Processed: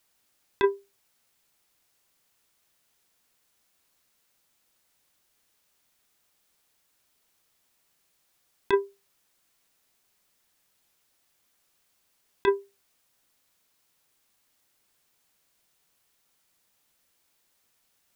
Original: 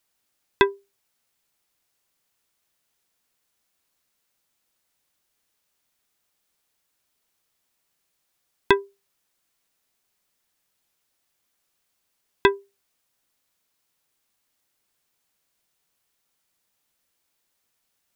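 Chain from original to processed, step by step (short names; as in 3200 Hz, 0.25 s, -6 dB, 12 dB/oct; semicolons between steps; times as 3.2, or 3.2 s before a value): negative-ratio compressor -19 dBFS, ratio -0.5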